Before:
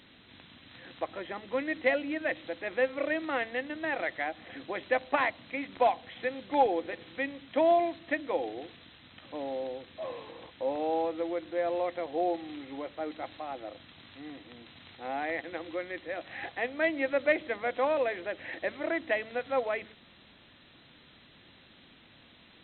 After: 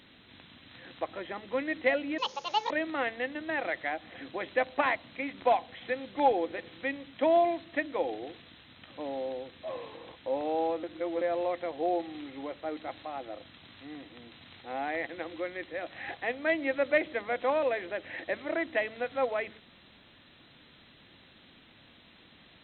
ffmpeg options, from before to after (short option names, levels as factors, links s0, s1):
-filter_complex "[0:a]asplit=5[s0][s1][s2][s3][s4];[s0]atrim=end=2.184[s5];[s1]atrim=start=2.18:end=3.05,asetpts=PTS-STARTPTS,asetrate=73206,aresample=44100[s6];[s2]atrim=start=3.046:end=11.182[s7];[s3]atrim=start=11.178:end=11.562,asetpts=PTS-STARTPTS,areverse[s8];[s4]atrim=start=11.558[s9];[s5][s6]acrossfade=d=0.004:c1=hsin:c2=hsin[s10];[s10][s7]acrossfade=d=0.004:c1=hsin:c2=hsin[s11];[s11][s8]acrossfade=d=0.004:c1=hsin:c2=hsin[s12];[s12][s9]acrossfade=d=0.004:c1=hsin:c2=hsin"